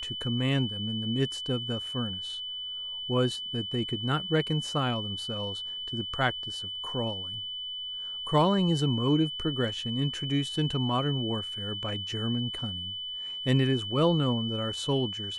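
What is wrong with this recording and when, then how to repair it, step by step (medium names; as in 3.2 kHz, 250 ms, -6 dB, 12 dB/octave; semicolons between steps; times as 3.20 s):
whine 3 kHz -34 dBFS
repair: band-stop 3 kHz, Q 30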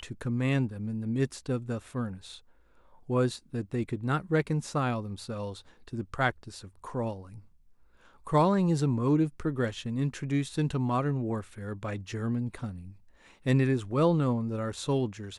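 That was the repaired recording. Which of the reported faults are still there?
nothing left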